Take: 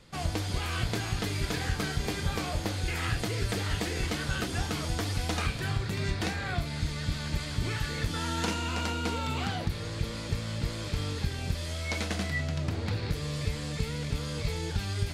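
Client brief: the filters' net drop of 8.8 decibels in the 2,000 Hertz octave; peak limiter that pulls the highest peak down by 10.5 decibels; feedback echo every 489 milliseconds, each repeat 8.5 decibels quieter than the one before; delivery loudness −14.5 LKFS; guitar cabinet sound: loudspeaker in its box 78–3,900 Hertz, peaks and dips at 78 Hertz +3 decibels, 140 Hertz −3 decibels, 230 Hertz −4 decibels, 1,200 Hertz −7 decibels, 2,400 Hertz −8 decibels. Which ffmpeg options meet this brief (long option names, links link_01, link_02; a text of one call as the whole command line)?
ffmpeg -i in.wav -af "equalizer=frequency=2000:width_type=o:gain=-7.5,alimiter=level_in=2.5dB:limit=-24dB:level=0:latency=1,volume=-2.5dB,highpass=78,equalizer=frequency=78:width_type=q:width=4:gain=3,equalizer=frequency=140:width_type=q:width=4:gain=-3,equalizer=frequency=230:width_type=q:width=4:gain=-4,equalizer=frequency=1200:width_type=q:width=4:gain=-7,equalizer=frequency=2400:width_type=q:width=4:gain=-8,lowpass=frequency=3900:width=0.5412,lowpass=frequency=3900:width=1.3066,aecho=1:1:489|978|1467|1956:0.376|0.143|0.0543|0.0206,volume=23dB" out.wav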